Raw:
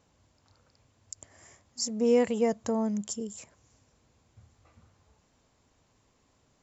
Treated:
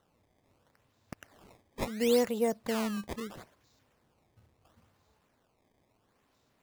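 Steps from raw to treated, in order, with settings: bass shelf 120 Hz -9 dB; decimation with a swept rate 18×, swing 160% 0.74 Hz; trim -2 dB

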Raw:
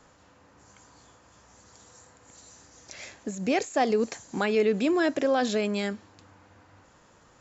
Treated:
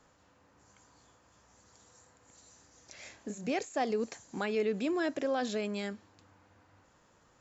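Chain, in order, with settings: 3.02–3.50 s: doubling 29 ms -4 dB; trim -7.5 dB

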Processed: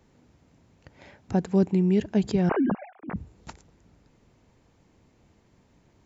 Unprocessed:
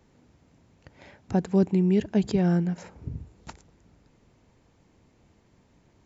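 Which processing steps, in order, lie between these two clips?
2.49–3.16 s: formants replaced by sine waves

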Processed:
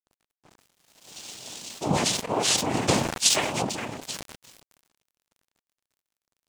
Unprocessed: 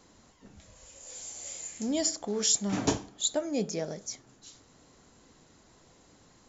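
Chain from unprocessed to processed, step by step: comb filter that takes the minimum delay 7 ms; noise-vocoded speech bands 4; 3.20–3.62 s: tilt shelf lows -7 dB, about 1.4 kHz; crossover distortion -53 dBFS; decay stretcher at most 57 dB/s; trim +6 dB

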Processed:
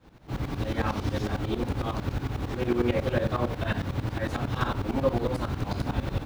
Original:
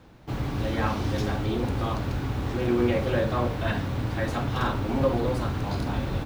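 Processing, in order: tremolo saw up 11 Hz, depth 85%; trim +2 dB

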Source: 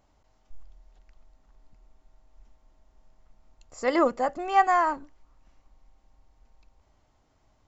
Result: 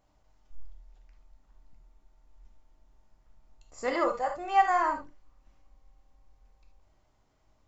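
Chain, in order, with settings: 3.93–4.70 s: peaking EQ 260 Hz -12.5 dB 0.58 oct; gated-style reverb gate 100 ms flat, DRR 2.5 dB; trim -5 dB

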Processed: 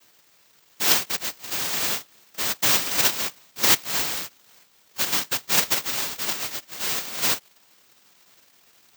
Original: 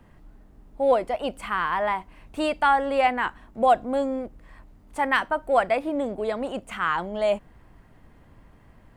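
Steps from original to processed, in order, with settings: noise-vocoded speech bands 1; careless resampling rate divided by 2×, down filtered, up zero stuff; trim -3.5 dB

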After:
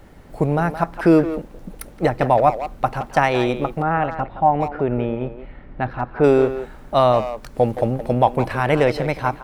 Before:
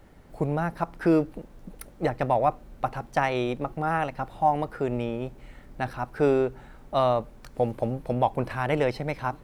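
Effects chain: 3.82–6.24 s: distance through air 380 m; speakerphone echo 170 ms, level -10 dB; trim +7.5 dB

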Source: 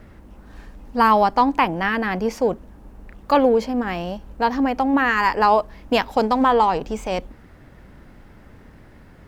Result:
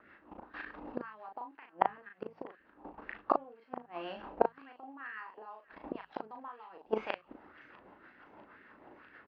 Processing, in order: in parallel at -2.5 dB: peak limiter -12.5 dBFS, peak gain reduction 7.5 dB; on the sum: level held to a coarse grid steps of 18 dB; small resonant body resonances 310/2700 Hz, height 7 dB, ringing for 20 ms; inverted gate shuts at -14 dBFS, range -32 dB; reverse; upward compressor, threshold -47 dBFS; reverse; steep low-pass 4.7 kHz; de-hum 55.19 Hz, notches 3; rotary cabinet horn 6.3 Hz; doubling 37 ms -4.5 dB; feedback echo behind a high-pass 648 ms, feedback 75%, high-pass 1.7 kHz, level -19 dB; LFO band-pass sine 2 Hz 810–1700 Hz; trim +10.5 dB

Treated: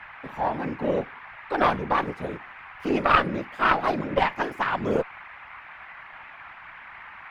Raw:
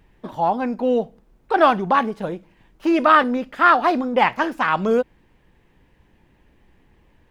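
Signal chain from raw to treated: band noise 780–2300 Hz -37 dBFS; whisper effect; Chebyshev shaper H 2 -7 dB, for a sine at 0 dBFS; trim -6.5 dB

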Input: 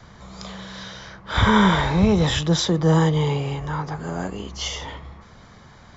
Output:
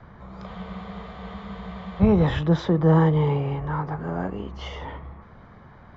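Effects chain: low-pass 1.7 kHz 12 dB/octave; spectral freeze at 0.49 s, 1.52 s

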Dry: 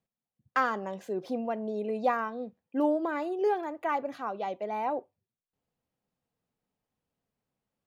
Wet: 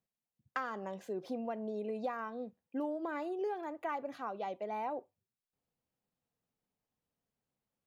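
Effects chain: compression, threshold -29 dBFS, peak gain reduction 8 dB; trim -4.5 dB

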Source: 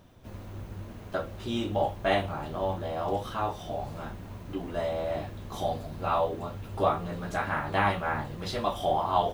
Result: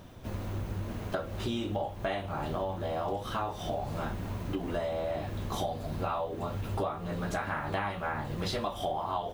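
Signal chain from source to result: compression 10:1, threshold -36 dBFS, peak gain reduction 17 dB; trim +6.5 dB

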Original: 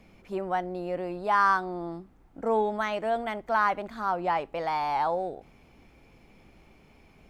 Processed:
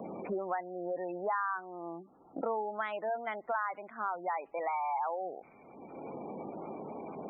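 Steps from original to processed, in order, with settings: level-controlled noise filter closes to 750 Hz, open at -22 dBFS; high-pass 420 Hz 6 dB/octave; spectral gate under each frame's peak -20 dB strong; tilt EQ +1.5 dB/octave; three bands compressed up and down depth 100%; trim -5.5 dB

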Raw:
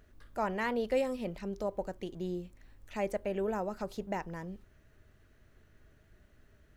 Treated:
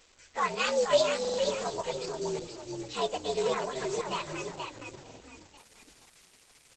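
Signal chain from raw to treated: frequency axis rescaled in octaves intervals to 118%; 2.28–3.00 s: resonant low shelf 110 Hz -7 dB, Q 1.5; comb 2 ms, depth 53%; companded quantiser 6-bit; RIAA curve recording; frequency-shifting echo 470 ms, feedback 40%, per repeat -42 Hz, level -5 dB; resampled via 22.05 kHz; buffer glitch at 1.20/5.02 s, samples 2048, times 3; trim +7.5 dB; Opus 12 kbps 48 kHz

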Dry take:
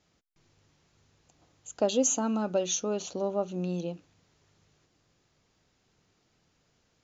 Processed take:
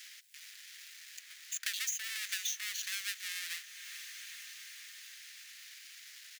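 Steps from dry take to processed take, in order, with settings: square wave that keeps the level; elliptic high-pass 1.8 kHz, stop band 80 dB; compression 2:1, threshold -38 dBFS, peak gain reduction 10 dB; tempo 1.1×; echo that smears into a reverb 457 ms, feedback 48%, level -16 dB; three bands compressed up and down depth 70%; trim +2.5 dB

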